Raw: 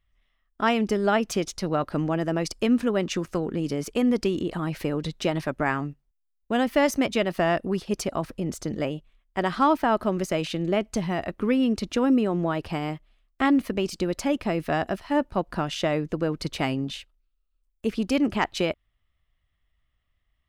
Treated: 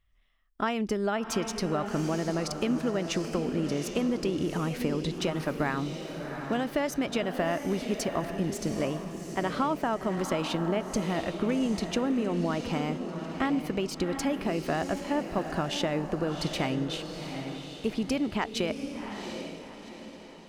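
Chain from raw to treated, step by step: compression, threshold -25 dBFS, peak gain reduction 9 dB; echo that smears into a reverb 752 ms, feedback 43%, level -7 dB

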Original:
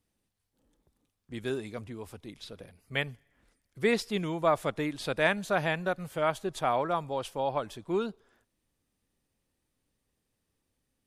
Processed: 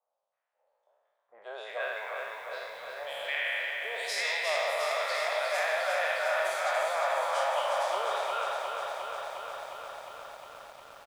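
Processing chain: spectral sustain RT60 1.49 s; elliptic high-pass 590 Hz, stop band 50 dB; level-controlled noise filter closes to 1.3 kHz, open at -24.5 dBFS; reverse; compression 16:1, threshold -34 dBFS, peak gain reduction 16 dB; reverse; three bands offset in time lows, highs, mids 100/320 ms, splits 1.1/3.4 kHz; bit-crushed delay 356 ms, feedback 80%, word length 11-bit, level -5 dB; trim +8 dB

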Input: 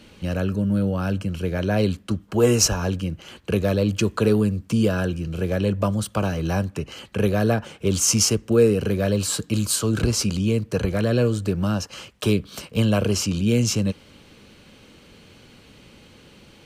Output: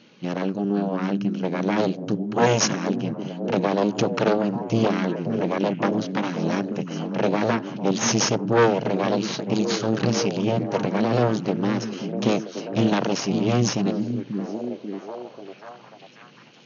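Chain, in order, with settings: Chebyshev shaper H 6 -8 dB, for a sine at -4.5 dBFS; FFT band-pass 110–6800 Hz; repeats whose band climbs or falls 539 ms, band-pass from 190 Hz, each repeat 0.7 oct, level -3 dB; trim -4 dB

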